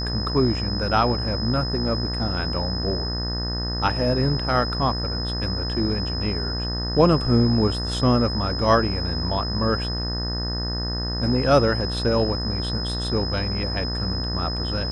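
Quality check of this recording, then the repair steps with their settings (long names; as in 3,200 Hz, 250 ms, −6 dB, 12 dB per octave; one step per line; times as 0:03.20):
mains buzz 60 Hz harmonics 32 −28 dBFS
whistle 5,100 Hz −29 dBFS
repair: notch filter 5,100 Hz, Q 30
hum removal 60 Hz, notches 32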